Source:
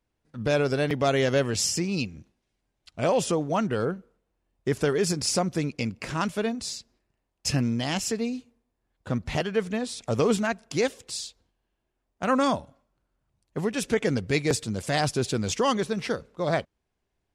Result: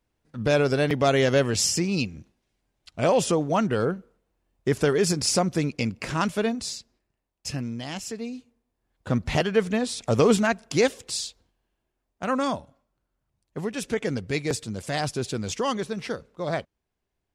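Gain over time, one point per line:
6.52 s +2.5 dB
7.52 s -6 dB
8.12 s -6 dB
9.18 s +4 dB
11.24 s +4 dB
12.37 s -2.5 dB

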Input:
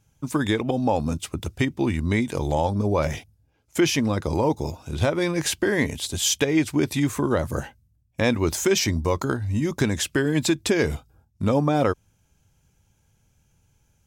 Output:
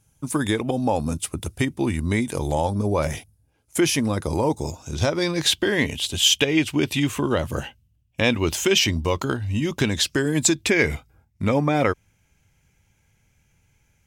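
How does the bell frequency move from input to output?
bell +12.5 dB 0.53 oct
4.4 s 10000 Hz
5.75 s 2900 Hz
9.91 s 2900 Hz
10.37 s 12000 Hz
10.69 s 2100 Hz

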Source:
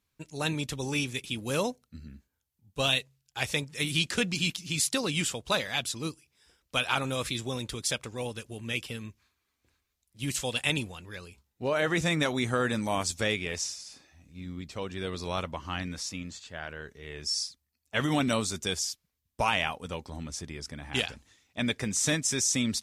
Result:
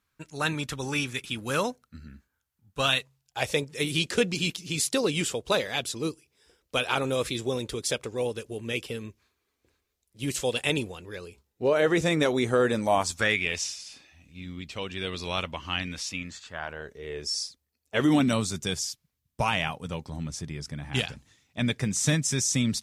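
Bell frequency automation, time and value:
bell +9.5 dB 0.92 oct
2.91 s 1400 Hz
3.6 s 430 Hz
12.73 s 430 Hz
13.5 s 2800 Hz
16.1 s 2800 Hz
17.01 s 450 Hz
17.95 s 450 Hz
18.36 s 140 Hz

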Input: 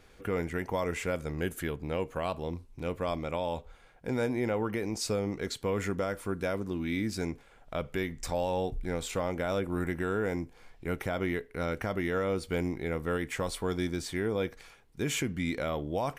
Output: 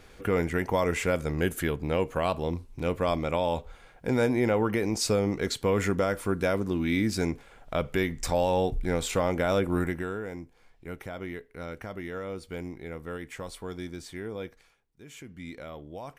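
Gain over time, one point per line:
9.76 s +5.5 dB
10.25 s -6 dB
14.47 s -6 dB
15.02 s -18 dB
15.45 s -9 dB

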